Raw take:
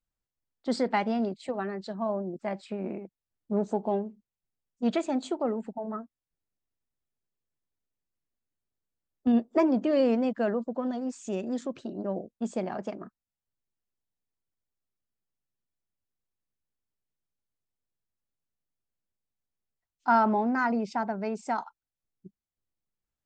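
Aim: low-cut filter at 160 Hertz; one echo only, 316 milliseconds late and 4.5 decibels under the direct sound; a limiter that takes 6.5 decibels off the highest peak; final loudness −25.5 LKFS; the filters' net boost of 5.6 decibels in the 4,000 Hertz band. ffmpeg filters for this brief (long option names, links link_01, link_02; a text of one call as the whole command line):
ffmpeg -i in.wav -af "highpass=160,equalizer=frequency=4000:width_type=o:gain=7,alimiter=limit=-18.5dB:level=0:latency=1,aecho=1:1:316:0.596,volume=5dB" out.wav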